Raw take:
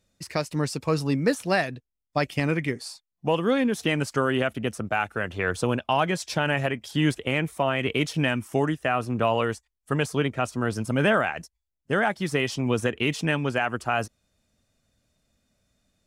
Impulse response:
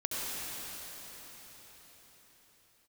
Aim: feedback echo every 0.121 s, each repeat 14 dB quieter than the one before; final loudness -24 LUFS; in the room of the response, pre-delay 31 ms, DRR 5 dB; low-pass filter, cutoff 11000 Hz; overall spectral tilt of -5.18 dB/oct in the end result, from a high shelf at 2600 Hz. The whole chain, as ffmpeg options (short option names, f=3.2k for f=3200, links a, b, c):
-filter_complex "[0:a]lowpass=11k,highshelf=f=2.6k:g=-6,aecho=1:1:121|242:0.2|0.0399,asplit=2[a][b];[1:a]atrim=start_sample=2205,adelay=31[c];[b][c]afir=irnorm=-1:irlink=0,volume=-11.5dB[d];[a][d]amix=inputs=2:normalize=0,volume=1.5dB"